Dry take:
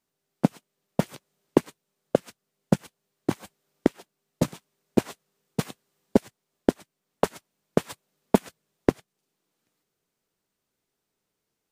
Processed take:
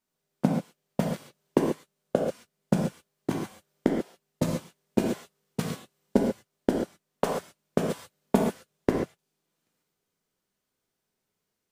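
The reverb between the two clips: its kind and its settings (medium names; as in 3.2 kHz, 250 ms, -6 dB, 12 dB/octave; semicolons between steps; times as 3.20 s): gated-style reverb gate 160 ms flat, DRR -0.5 dB; trim -4 dB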